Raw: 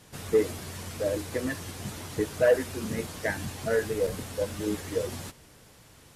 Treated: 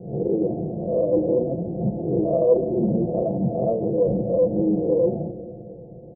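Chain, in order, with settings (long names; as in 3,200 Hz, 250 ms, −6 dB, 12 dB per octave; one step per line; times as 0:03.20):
peak hold with a rise ahead of every peak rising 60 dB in 0.55 s
high-pass filter 65 Hz
in parallel at +3 dB: compressor whose output falls as the input rises −32 dBFS, ratio −1
on the sum: Butterworth low-pass 710 Hz 72 dB per octave
comb filter 5.8 ms, depth 89%
on a send at −10 dB: convolution reverb RT60 2.7 s, pre-delay 5 ms
on the sum: highs frequency-modulated by the lows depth 0.11 ms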